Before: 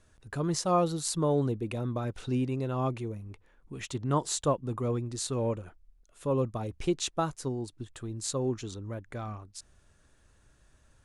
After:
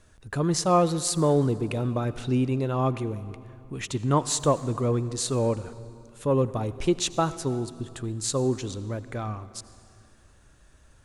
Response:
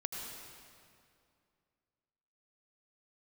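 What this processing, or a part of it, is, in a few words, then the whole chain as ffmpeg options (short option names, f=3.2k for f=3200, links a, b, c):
saturated reverb return: -filter_complex "[0:a]asplit=2[a][b];[1:a]atrim=start_sample=2205[c];[b][c]afir=irnorm=-1:irlink=0,asoftclip=type=tanh:threshold=-25.5dB,volume=-11dB[d];[a][d]amix=inputs=2:normalize=0,volume=4dB"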